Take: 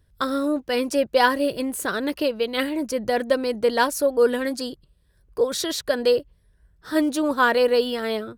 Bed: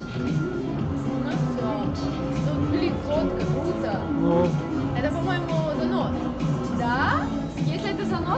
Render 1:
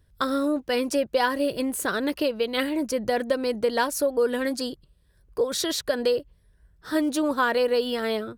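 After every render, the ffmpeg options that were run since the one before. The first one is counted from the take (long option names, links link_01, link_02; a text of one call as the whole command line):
ffmpeg -i in.wav -af "acompressor=threshold=-20dB:ratio=3" out.wav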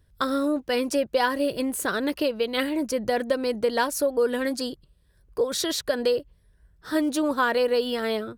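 ffmpeg -i in.wav -af anull out.wav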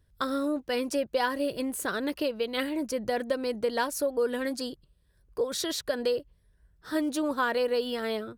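ffmpeg -i in.wav -af "volume=-4.5dB" out.wav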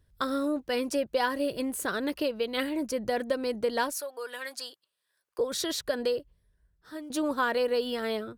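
ffmpeg -i in.wav -filter_complex "[0:a]asettb=1/sr,asplit=3[link_01][link_02][link_03];[link_01]atrim=end=3.924[link_04];[link_02]atrim=start=3.92:end=5.39,asetpts=PTS-STARTPTS,afade=type=in:duration=0.004:curve=qsin,afade=type=out:start_time=1.466:duration=0.004:curve=qsin,highpass=950[link_05];[link_03]atrim=start=5.386[link_06];[link_04][link_05]acrossfade=duration=0.004:curve1=hsin:curve2=qsin[link_07];[link_07][link_06]acrossfade=duration=0.004:curve1=qsin:curve2=hsin,asplit=2[link_08][link_09];[link_08]atrim=end=7.1,asetpts=PTS-STARTPTS,afade=type=out:start_time=5.96:duration=1.14:silence=0.177828[link_10];[link_09]atrim=start=7.1,asetpts=PTS-STARTPTS,afade=type=in:duration=0.004:curve=hsin:silence=0.177828[link_11];[link_10][link_11]concat=n=2:v=0:a=1" out.wav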